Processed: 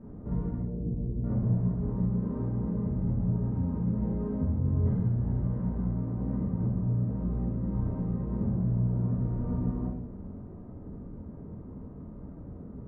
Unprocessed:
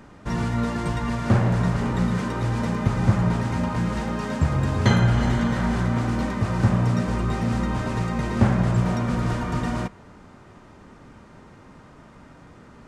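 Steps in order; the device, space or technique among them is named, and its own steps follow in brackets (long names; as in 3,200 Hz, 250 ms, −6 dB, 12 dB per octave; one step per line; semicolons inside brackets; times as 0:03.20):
0:00.58–0:01.24: inverse Chebyshev low-pass filter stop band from 2,300 Hz, stop band 70 dB
television next door (downward compressor 5 to 1, threshold −32 dBFS, peak gain reduction 18 dB; low-pass filter 390 Hz 12 dB per octave; convolution reverb RT60 0.80 s, pre-delay 10 ms, DRR −6.5 dB)
level −1.5 dB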